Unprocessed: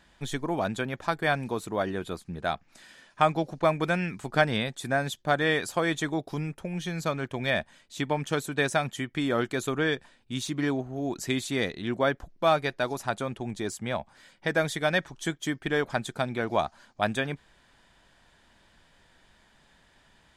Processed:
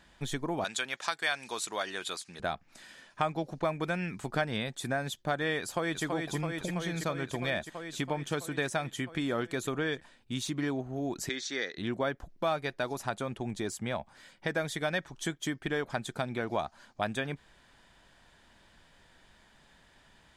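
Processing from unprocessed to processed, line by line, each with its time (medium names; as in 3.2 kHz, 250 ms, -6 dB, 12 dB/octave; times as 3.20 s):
0.64–2.40 s: frequency weighting ITU-R 468
5.61–6.04 s: echo throw 330 ms, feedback 80%, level -5.5 dB
11.29–11.78 s: cabinet simulation 460–6100 Hz, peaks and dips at 680 Hz -8 dB, 1 kHz -8 dB, 1.7 kHz +6 dB, 2.7 kHz -8 dB, 5.7 kHz +8 dB
whole clip: compression 2:1, threshold -32 dBFS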